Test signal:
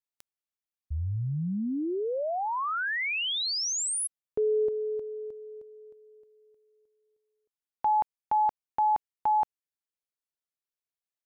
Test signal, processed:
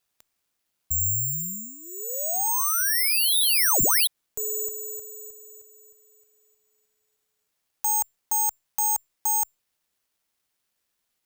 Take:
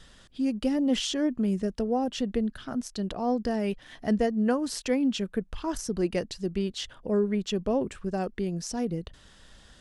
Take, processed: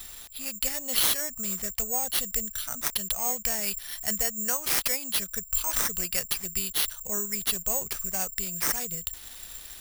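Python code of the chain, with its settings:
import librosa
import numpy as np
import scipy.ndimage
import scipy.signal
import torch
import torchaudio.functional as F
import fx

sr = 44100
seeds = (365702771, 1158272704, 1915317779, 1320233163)

p1 = fx.tone_stack(x, sr, knobs='10-0-10')
p2 = fx.over_compress(p1, sr, threshold_db=-41.0, ratio=-1.0)
p3 = p1 + F.gain(torch.from_numpy(p2), -2.0).numpy()
p4 = (np.kron(p3[::6], np.eye(6)[0]) * 6)[:len(p3)]
y = F.gain(torch.from_numpy(p4), 1.5).numpy()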